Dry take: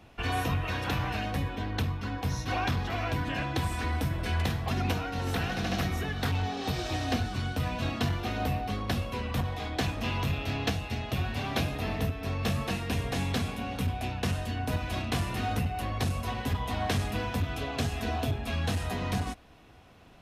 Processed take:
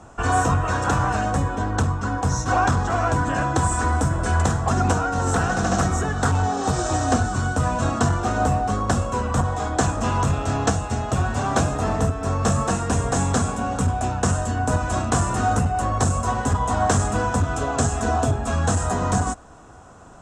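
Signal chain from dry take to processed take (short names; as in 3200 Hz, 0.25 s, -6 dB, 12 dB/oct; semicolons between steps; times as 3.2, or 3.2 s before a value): EQ curve 300 Hz 0 dB, 1400 Hz +6 dB, 2200 Hz -12 dB, 4500 Hz -8 dB, 7700 Hz +15 dB, 12000 Hz -18 dB; gain +8.5 dB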